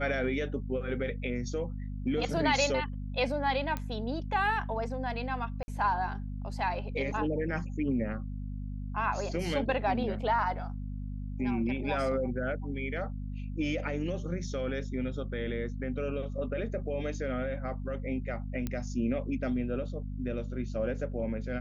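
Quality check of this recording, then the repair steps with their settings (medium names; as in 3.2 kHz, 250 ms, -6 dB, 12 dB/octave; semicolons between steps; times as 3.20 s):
hum 50 Hz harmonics 5 -37 dBFS
3.77 s: pop -20 dBFS
5.63–5.68 s: dropout 50 ms
18.67 s: pop -20 dBFS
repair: de-click; de-hum 50 Hz, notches 5; interpolate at 5.63 s, 50 ms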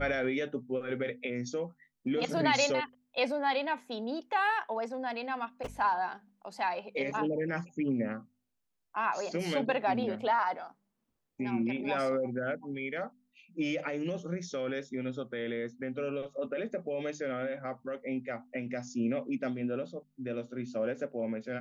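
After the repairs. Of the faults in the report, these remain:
nothing left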